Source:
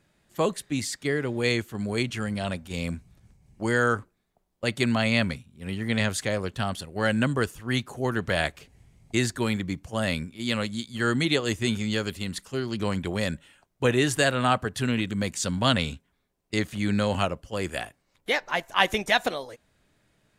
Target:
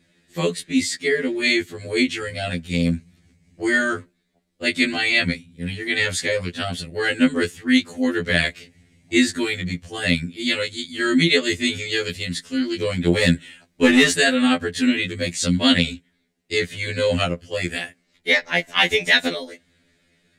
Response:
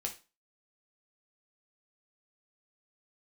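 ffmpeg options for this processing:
-filter_complex "[0:a]equalizer=f=125:t=o:w=1:g=7,equalizer=f=250:t=o:w=1:g=10,equalizer=f=500:t=o:w=1:g=6,equalizer=f=1k:t=o:w=1:g=-5,equalizer=f=2k:t=o:w=1:g=12,equalizer=f=4k:t=o:w=1:g=9,equalizer=f=8k:t=o:w=1:g=7,asettb=1/sr,asplit=3[a][b][c];[a]atrim=end=13.074[d];[b]atrim=start=13.07:end=14.12,asetpts=PTS-STARTPTS,afade=t=in:d=0.004:c=qsin,afade=t=out:st=1.046:d=0.004:c=qsin,acontrast=39[e];[c]atrim=start=14.116[f];[d][e]acrossfade=d=0.004:c1=hsin:c2=qsin[g];[g][f]acrossfade=d=0.004:c1=qsin:c2=hsin,afftfilt=real='re*2*eq(mod(b,4),0)':imag='im*2*eq(mod(b,4),0)':win_size=2048:overlap=0.75,volume=-1.5dB"

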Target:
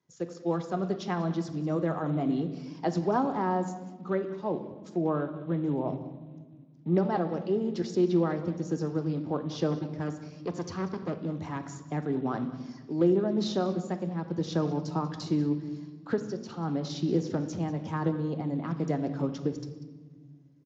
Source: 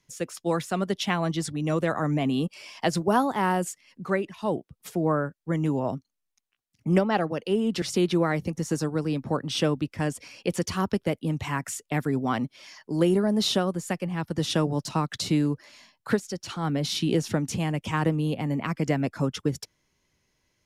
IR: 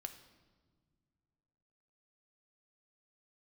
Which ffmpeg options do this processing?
-filter_complex "[0:a]equalizer=f=2.6k:t=o:w=1.3:g=-13.5,asplit=3[a][b][c];[a]afade=t=out:st=9.7:d=0.02[d];[b]asoftclip=type=hard:threshold=-23.5dB,afade=t=in:st=9.7:d=0.02,afade=t=out:st=11.81:d=0.02[e];[c]afade=t=in:st=11.81:d=0.02[f];[d][e][f]amix=inputs=3:normalize=0,highpass=110,lowpass=5.7k,aecho=1:1:190:0.126[g];[1:a]atrim=start_sample=2205[h];[g][h]afir=irnorm=-1:irlink=0,volume=1dB" -ar 16000 -c:a libspeex -b:a 34k

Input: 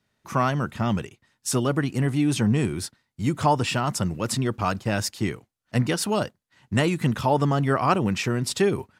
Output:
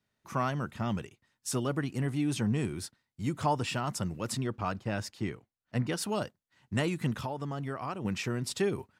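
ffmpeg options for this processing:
-filter_complex "[0:a]asettb=1/sr,asplit=3[a][b][c];[a]atrim=end=4.464[d];[b]atrim=start=4.46:end=5.93,asetpts=PTS-STARTPTS,afade=t=in:d=0.004:c=qsin,afade=t=out:st=1.466:d=0.004:c=qsin,highshelf=f=5.6k:g=-10.5[e];[c]atrim=start=5.926[f];[d][e]acrossfade=d=0.004:c1=hsin:c2=qsin[g];[g][f]acrossfade=d=0.004:c1=qsin:c2=hsin,asettb=1/sr,asplit=3[h][i][j];[h]atrim=end=7.124[k];[i]atrim=start=7.12:end=8.05,asetpts=PTS-STARTPTS,afade=t=in:d=0.004:c=qsin,afade=t=out:st=0.926:d=0.004:c=qsin,acompressor=threshold=-24dB:ratio=12[l];[j]atrim=start=8.046[m];[k][l]acrossfade=d=0.004:c1=hsin:c2=qsin[n];[n][m]acrossfade=d=0.004:c1=qsin:c2=hsin,volume=-8dB"

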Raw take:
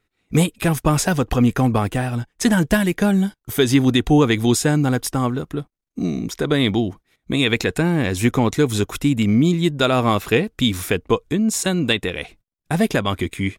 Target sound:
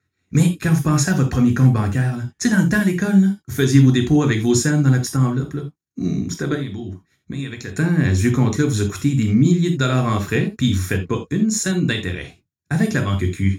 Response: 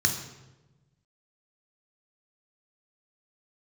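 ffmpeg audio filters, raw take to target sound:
-filter_complex "[0:a]asettb=1/sr,asplit=3[a][b][c];[a]atrim=end=6.544[d];[b]atrim=start=6.54:end=7.76,asetpts=PTS-STARTPTS,afade=t=in:d=0.004:c=qsin,afade=t=out:st=1.216:d=0.004:c=qsin,acompressor=threshold=-25dB:ratio=16[e];[c]atrim=start=7.756[f];[d][e]acrossfade=d=0.004:c1=hsin:c2=qsin[g];[g][f]acrossfade=d=0.004:c1=qsin:c2=hsin[h];[1:a]atrim=start_sample=2205,atrim=end_sample=3969[i];[h][i]afir=irnorm=-1:irlink=0,volume=-12.5dB"

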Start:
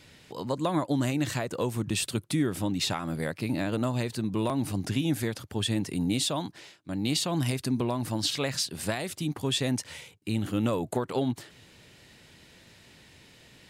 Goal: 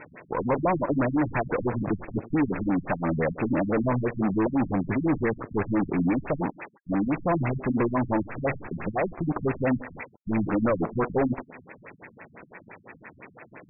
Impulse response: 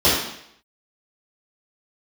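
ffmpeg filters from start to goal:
-filter_complex "[0:a]asplit=2[a][b];[1:a]atrim=start_sample=2205,adelay=12[c];[b][c]afir=irnorm=-1:irlink=0,volume=-44.5dB[d];[a][d]amix=inputs=2:normalize=0,acrusher=bits=7:dc=4:mix=0:aa=0.000001,asplit=2[e][f];[f]highpass=f=720:p=1,volume=29dB,asoftclip=type=tanh:threshold=-15dB[g];[e][g]amix=inputs=2:normalize=0,lowpass=f=2.8k:p=1,volume=-6dB,afftfilt=real='re*gte(hypot(re,im),0.00631)':imag='im*gte(hypot(re,im),0.00631)':win_size=1024:overlap=0.75,afftfilt=real='re*lt(b*sr/1024,210*pow(2700/210,0.5+0.5*sin(2*PI*5.9*pts/sr)))':imag='im*lt(b*sr/1024,210*pow(2700/210,0.5+0.5*sin(2*PI*5.9*pts/sr)))':win_size=1024:overlap=0.75"

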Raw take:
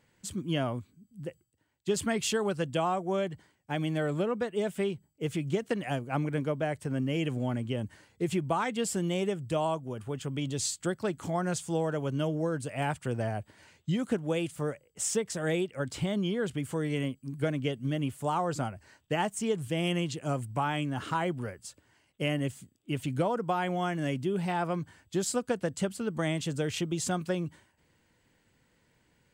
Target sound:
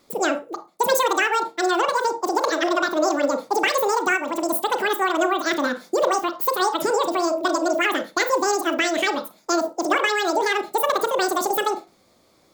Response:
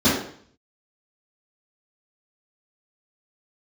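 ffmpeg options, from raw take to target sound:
-filter_complex "[0:a]asplit=2[a][b];[1:a]atrim=start_sample=2205,adelay=67[c];[b][c]afir=irnorm=-1:irlink=0,volume=-31.5dB[d];[a][d]amix=inputs=2:normalize=0,asetrate=103194,aresample=44100,volume=8.5dB"

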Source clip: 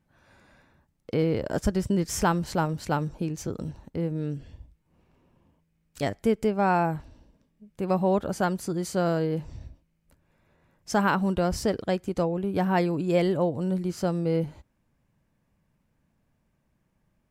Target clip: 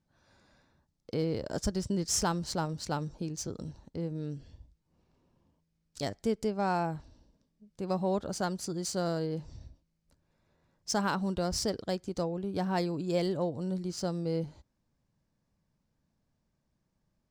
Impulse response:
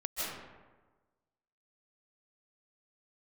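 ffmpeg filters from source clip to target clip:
-af "highshelf=f=3.5k:t=q:w=1.5:g=9.5,adynamicsmooth=sensitivity=3.5:basefreq=5.6k,volume=-6.5dB"

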